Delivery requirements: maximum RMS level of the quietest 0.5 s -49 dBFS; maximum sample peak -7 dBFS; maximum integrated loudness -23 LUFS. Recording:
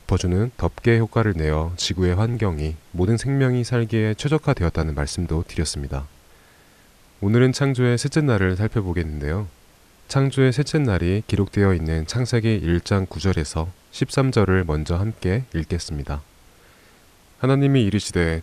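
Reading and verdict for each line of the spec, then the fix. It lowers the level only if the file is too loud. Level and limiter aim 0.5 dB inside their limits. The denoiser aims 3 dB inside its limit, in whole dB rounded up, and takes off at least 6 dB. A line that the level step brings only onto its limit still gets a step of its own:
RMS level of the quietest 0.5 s -52 dBFS: pass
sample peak -6.0 dBFS: fail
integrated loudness -21.5 LUFS: fail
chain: trim -2 dB

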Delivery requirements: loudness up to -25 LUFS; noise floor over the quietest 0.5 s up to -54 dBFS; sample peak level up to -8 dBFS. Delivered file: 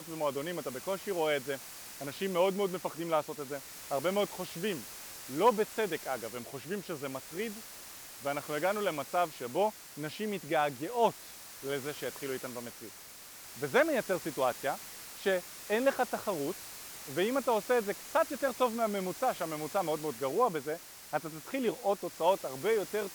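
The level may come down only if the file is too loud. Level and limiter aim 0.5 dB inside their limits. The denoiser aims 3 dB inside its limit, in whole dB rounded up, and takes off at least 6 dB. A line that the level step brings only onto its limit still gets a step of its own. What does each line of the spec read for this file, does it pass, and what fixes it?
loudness -33.5 LUFS: pass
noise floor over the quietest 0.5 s -50 dBFS: fail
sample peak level -14.5 dBFS: pass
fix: noise reduction 7 dB, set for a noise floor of -50 dBFS

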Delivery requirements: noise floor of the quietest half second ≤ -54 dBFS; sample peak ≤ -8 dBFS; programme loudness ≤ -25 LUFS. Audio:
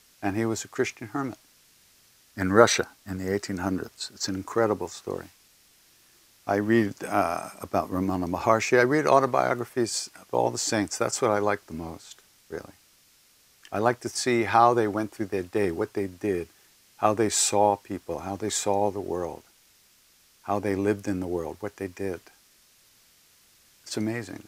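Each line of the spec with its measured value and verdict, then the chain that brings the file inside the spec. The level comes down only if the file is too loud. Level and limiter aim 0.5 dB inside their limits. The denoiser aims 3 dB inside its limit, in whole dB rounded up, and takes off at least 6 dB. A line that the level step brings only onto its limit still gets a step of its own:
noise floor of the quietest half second -60 dBFS: pass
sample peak -3.0 dBFS: fail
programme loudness -26.5 LUFS: pass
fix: peak limiter -8.5 dBFS

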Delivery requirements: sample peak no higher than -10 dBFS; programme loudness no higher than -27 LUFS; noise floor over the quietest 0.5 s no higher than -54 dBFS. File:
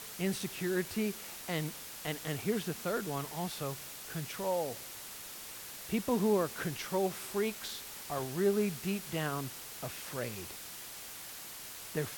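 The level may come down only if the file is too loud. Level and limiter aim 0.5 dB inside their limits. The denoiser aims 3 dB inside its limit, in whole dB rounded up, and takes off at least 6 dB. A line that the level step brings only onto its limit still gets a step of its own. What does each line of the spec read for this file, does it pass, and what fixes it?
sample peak -18.0 dBFS: pass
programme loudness -36.0 LUFS: pass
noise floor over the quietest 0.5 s -46 dBFS: fail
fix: noise reduction 11 dB, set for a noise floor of -46 dBFS

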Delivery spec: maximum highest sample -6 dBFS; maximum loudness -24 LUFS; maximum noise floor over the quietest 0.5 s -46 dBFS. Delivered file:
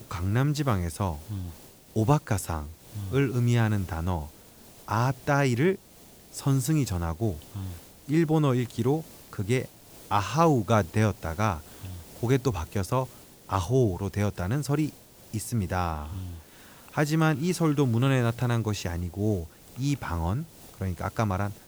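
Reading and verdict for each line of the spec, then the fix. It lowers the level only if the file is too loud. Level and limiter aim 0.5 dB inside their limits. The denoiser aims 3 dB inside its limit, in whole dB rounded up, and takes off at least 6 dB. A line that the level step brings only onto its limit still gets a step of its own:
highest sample -8.5 dBFS: pass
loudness -27.5 LUFS: pass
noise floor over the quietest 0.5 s -52 dBFS: pass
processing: none needed

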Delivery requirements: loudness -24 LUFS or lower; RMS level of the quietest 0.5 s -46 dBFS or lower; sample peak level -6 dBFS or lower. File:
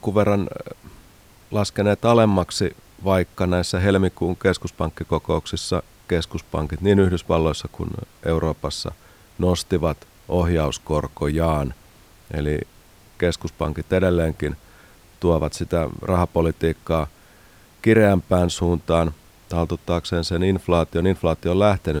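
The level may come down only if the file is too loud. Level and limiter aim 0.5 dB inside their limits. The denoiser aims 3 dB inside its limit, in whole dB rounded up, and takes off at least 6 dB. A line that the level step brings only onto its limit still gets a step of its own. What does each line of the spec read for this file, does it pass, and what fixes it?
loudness -22.0 LUFS: fail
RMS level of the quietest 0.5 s -50 dBFS: pass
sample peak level -3.5 dBFS: fail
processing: trim -2.5 dB; peak limiter -6.5 dBFS

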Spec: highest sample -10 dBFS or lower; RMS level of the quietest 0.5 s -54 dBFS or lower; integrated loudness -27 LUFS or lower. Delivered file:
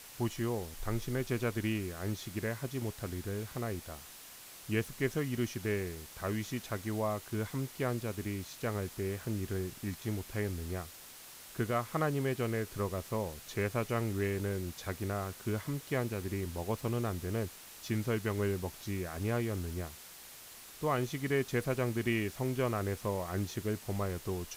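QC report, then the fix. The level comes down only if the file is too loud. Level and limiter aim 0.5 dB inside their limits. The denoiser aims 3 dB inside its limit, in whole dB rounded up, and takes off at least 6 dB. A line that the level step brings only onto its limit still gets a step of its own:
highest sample -18.5 dBFS: pass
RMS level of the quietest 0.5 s -51 dBFS: fail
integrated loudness -36.0 LUFS: pass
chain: noise reduction 6 dB, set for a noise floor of -51 dBFS

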